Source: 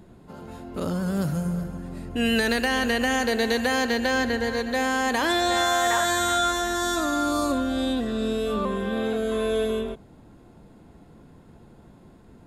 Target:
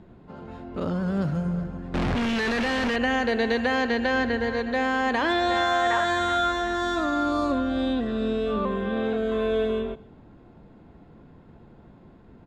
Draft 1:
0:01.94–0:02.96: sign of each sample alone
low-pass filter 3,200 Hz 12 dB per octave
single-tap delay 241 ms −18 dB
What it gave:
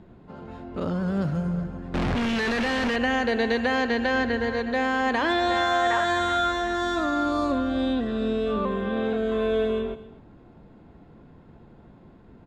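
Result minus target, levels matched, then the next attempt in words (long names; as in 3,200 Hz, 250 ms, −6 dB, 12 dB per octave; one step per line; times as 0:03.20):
echo-to-direct +9 dB
0:01.94–0:02.96: sign of each sample alone
low-pass filter 3,200 Hz 12 dB per octave
single-tap delay 241 ms −27 dB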